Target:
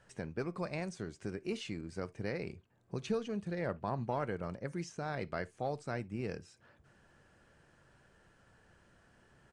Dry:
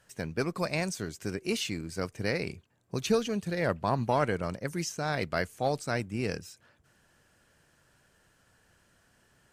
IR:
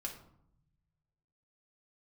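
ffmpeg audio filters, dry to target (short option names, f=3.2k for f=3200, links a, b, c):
-filter_complex "[0:a]highshelf=f=3k:g=-11.5,acompressor=threshold=-53dB:ratio=1.5,asplit=2[a][b];[1:a]atrim=start_sample=2205,atrim=end_sample=3528[c];[b][c]afir=irnorm=-1:irlink=0,volume=-10.5dB[d];[a][d]amix=inputs=2:normalize=0,aresample=22050,aresample=44100,volume=1dB"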